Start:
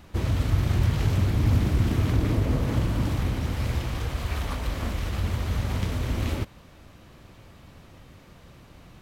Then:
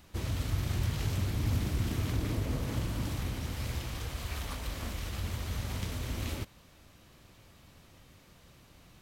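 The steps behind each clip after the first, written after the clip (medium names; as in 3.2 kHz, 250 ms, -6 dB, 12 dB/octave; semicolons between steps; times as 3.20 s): treble shelf 3.1 kHz +9.5 dB; trim -9 dB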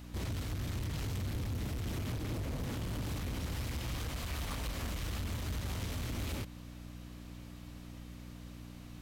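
compression 2.5:1, threshold -35 dBFS, peak gain reduction 7 dB; hard clipper -36.5 dBFS, distortion -10 dB; mains buzz 60 Hz, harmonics 5, -51 dBFS -3 dB/octave; trim +2.5 dB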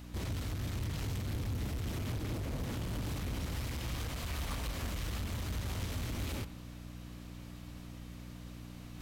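reverse; upward compressor, threshold -42 dBFS; reverse; reverberation RT60 0.80 s, pre-delay 58 ms, DRR 15 dB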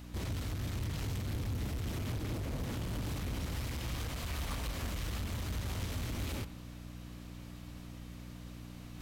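no audible change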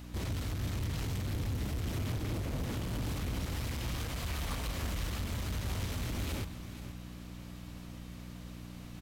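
delay 478 ms -13 dB; trim +1.5 dB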